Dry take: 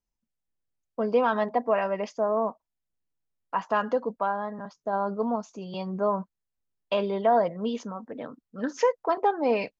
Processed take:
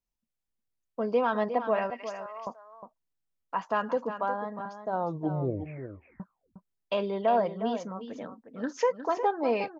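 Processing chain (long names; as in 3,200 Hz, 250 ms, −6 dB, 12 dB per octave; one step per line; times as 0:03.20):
0:01.90–0:02.47: high-pass filter 1,500 Hz 12 dB per octave
0:04.88: tape stop 1.32 s
single-tap delay 359 ms −10 dB
level −3 dB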